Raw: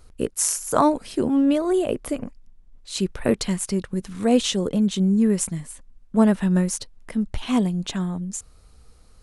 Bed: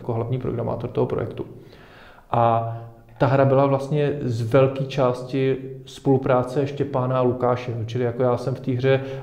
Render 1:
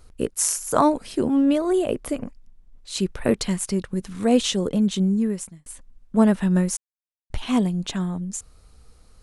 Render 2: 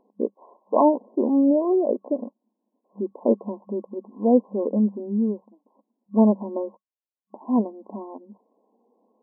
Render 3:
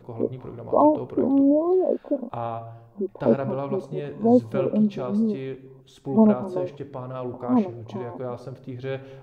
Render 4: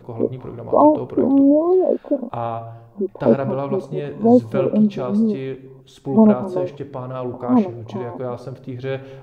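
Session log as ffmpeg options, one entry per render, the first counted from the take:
ffmpeg -i in.wav -filter_complex "[0:a]asplit=4[link_01][link_02][link_03][link_04];[link_01]atrim=end=5.66,asetpts=PTS-STARTPTS,afade=type=out:start_time=4.99:duration=0.67[link_05];[link_02]atrim=start=5.66:end=6.77,asetpts=PTS-STARTPTS,afade=type=in:duration=0.004:curve=hsin,afade=type=out:start_time=1.106:duration=0.004:curve=hsin[link_06];[link_03]atrim=start=6.77:end=7.3,asetpts=PTS-STARTPTS,volume=0[link_07];[link_04]atrim=start=7.3,asetpts=PTS-STARTPTS,afade=type=in:duration=0.004:curve=hsin[link_08];[link_05][link_06][link_07][link_08]concat=n=4:v=0:a=1" out.wav
ffmpeg -i in.wav -af "afftfilt=real='re*between(b*sr/4096,200,1100)':imag='im*between(b*sr/4096,200,1100)':win_size=4096:overlap=0.75,adynamicequalizer=threshold=0.0112:dfrequency=560:dqfactor=5.4:tfrequency=560:tqfactor=5.4:attack=5:release=100:ratio=0.375:range=2.5:mode=boostabove:tftype=bell" out.wav
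ffmpeg -i in.wav -i bed.wav -filter_complex "[1:a]volume=-12dB[link_01];[0:a][link_01]amix=inputs=2:normalize=0" out.wav
ffmpeg -i in.wav -af "volume=5dB,alimiter=limit=-2dB:level=0:latency=1" out.wav

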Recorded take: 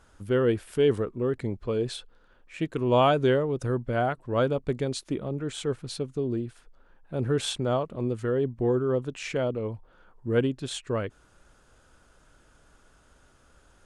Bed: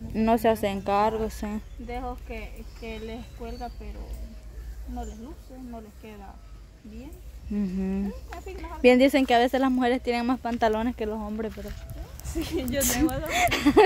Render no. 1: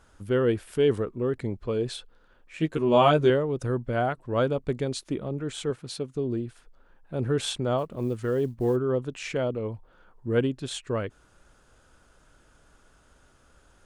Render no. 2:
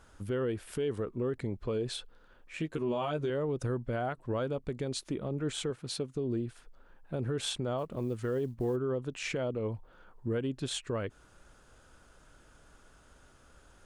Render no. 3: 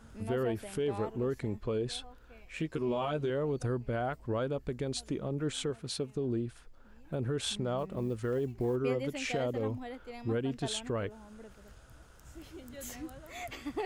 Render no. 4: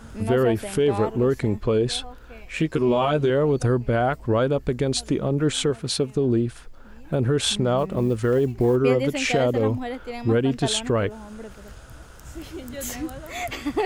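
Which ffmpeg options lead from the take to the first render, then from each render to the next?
ffmpeg -i in.wav -filter_complex "[0:a]asettb=1/sr,asplit=3[link_01][link_02][link_03];[link_01]atrim=end=2.594[link_04];[link_02]atrim=start=2.59:end=3.3,asetpts=PTS-STARTPTS,afade=type=in:duration=0.004:curve=qsin,afade=type=out:start_time=0.706:duration=0.004:curve=qsin,asplit=2[link_05][link_06];[link_06]adelay=13,volume=-3dB[link_07];[link_05][link_07]amix=inputs=2:normalize=0,atrim=end_sample=31311[link_08];[link_03]atrim=start=3.296[link_09];[link_04][link_08]acrossfade=duration=0.004:curve1=hsin:curve2=qsin[link_10];[link_10][link_09]acrossfade=duration=0.004:curve1=qsin:curve2=hsin,asettb=1/sr,asplit=3[link_11][link_12][link_13];[link_11]atrim=end=5.704[link_14];[link_12]atrim=start=5.7:end=6.15,asetpts=PTS-STARTPTS,afade=type=in:duration=0.004:curve=qsin,afade=type=out:start_time=0.446:duration=0.004:curve=qsin,highpass=frequency=130:poles=1[link_15];[link_13]atrim=start=6.146[link_16];[link_14][link_15]acrossfade=duration=0.004:curve1=hsin:curve2=qsin[link_17];[link_17][link_16]acrossfade=duration=0.004:curve1=qsin:curve2=hsin,asplit=3[link_18][link_19][link_20];[link_18]afade=type=out:start_time=7.77:duration=0.02[link_21];[link_19]acrusher=bits=9:mode=log:mix=0:aa=0.000001,afade=type=in:start_time=7.77:duration=0.02,afade=type=out:start_time=8.75:duration=0.02[link_22];[link_20]afade=type=in:start_time=8.75:duration=0.02[link_23];[link_21][link_22][link_23]amix=inputs=3:normalize=0" out.wav
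ffmpeg -i in.wav -af "acompressor=threshold=-25dB:ratio=3,alimiter=level_in=0.5dB:limit=-24dB:level=0:latency=1:release=233,volume=-0.5dB" out.wav
ffmpeg -i in.wav -i bed.wav -filter_complex "[1:a]volume=-19.5dB[link_01];[0:a][link_01]amix=inputs=2:normalize=0" out.wav
ffmpeg -i in.wav -af "volume=12dB" out.wav

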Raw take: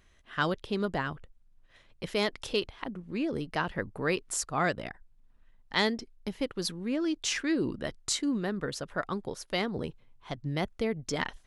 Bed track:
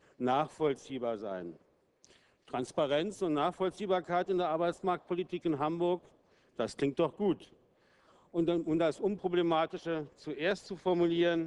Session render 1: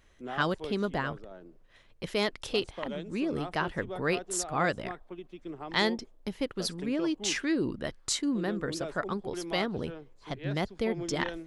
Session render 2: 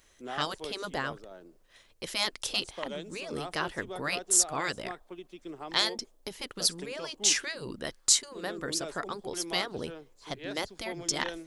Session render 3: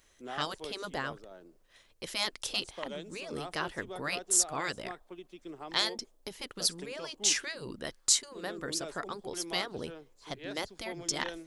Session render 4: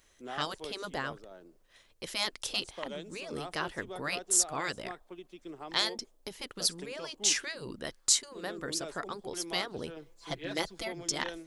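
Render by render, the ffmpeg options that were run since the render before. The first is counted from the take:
ffmpeg -i in.wav -i bed.wav -filter_complex "[1:a]volume=-9dB[link_01];[0:a][link_01]amix=inputs=2:normalize=0" out.wav
ffmpeg -i in.wav -af "afftfilt=real='re*lt(hypot(re,im),0.2)':imag='im*lt(hypot(re,im),0.2)':win_size=1024:overlap=0.75,bass=frequency=250:gain=-6,treble=frequency=4000:gain=11" out.wav
ffmpeg -i in.wav -af "volume=-2.5dB" out.wav
ffmpeg -i in.wav -filter_complex "[0:a]asettb=1/sr,asplit=3[link_01][link_02][link_03];[link_01]atrim=end=9.964[link_04];[link_02]atrim=start=9.96:end=10.88,asetpts=PTS-STARTPTS,afade=type=in:duration=0.004:curve=qsin,afade=type=out:start_time=0.916:duration=0.004:curve=qsin,aecho=1:1:6:0.93,atrim=end_sample=40572[link_05];[link_03]atrim=start=10.876[link_06];[link_04][link_05]acrossfade=duration=0.004:curve1=hsin:curve2=qsin[link_07];[link_07][link_06]acrossfade=duration=0.004:curve1=qsin:curve2=hsin" out.wav

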